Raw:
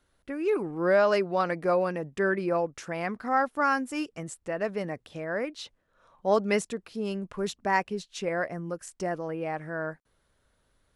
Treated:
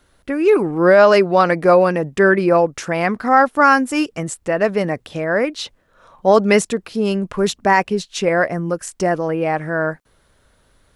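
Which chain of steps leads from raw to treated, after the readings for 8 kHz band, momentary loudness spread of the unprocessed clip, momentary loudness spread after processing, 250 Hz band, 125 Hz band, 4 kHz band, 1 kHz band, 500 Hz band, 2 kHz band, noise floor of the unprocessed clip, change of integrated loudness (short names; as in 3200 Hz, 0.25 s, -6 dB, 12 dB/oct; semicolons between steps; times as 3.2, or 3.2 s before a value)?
+13.0 dB, 12 LU, 11 LU, +13.0 dB, +13.0 dB, +12.5 dB, +12.5 dB, +12.5 dB, +12.5 dB, -72 dBFS, +12.5 dB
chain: maximiser +14 dB; gain -1 dB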